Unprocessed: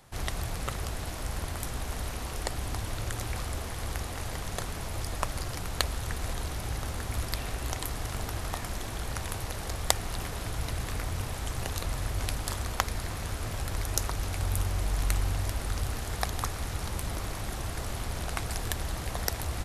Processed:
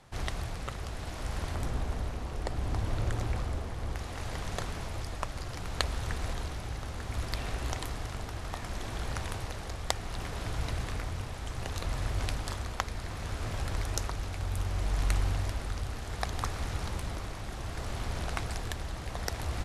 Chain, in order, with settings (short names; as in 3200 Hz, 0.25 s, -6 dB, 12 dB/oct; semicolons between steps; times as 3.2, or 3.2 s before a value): 1.55–3.96 tilt shelf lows +4 dB, about 1100 Hz; tremolo 0.66 Hz, depth 36%; air absorption 50 m